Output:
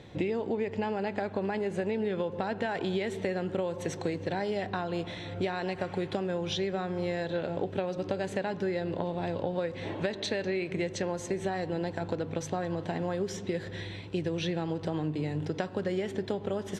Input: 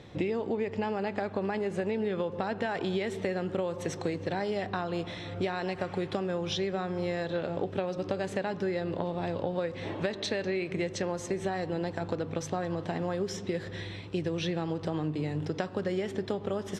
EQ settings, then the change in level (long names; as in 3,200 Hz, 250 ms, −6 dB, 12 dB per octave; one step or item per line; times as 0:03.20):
notch filter 1,200 Hz, Q 9.8
notch filter 5,300 Hz, Q 14
0.0 dB